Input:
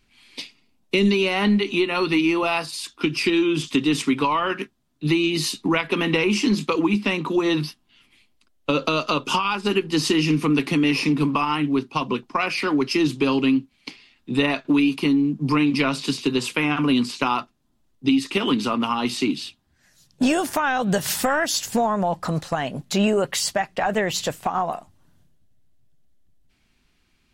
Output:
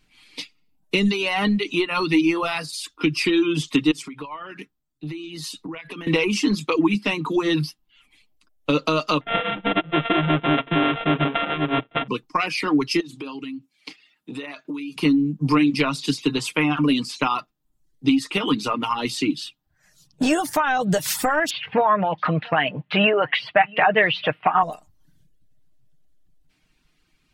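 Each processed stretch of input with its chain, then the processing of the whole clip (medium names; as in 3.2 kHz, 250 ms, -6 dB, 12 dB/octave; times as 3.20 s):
3.91–6.07 s: compression 20:1, threshold -30 dBFS + three bands expanded up and down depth 40%
9.21–12.08 s: sorted samples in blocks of 64 samples + careless resampling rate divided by 6×, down none, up filtered
13.00–14.96 s: high-pass 190 Hz + compression, threshold -30 dBFS
21.50–24.63 s: elliptic band-pass 100–2900 Hz + peaking EQ 2.2 kHz +10.5 dB 2.5 oct + delay 678 ms -22 dB
whole clip: reverb removal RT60 0.62 s; comb 6.5 ms, depth 46%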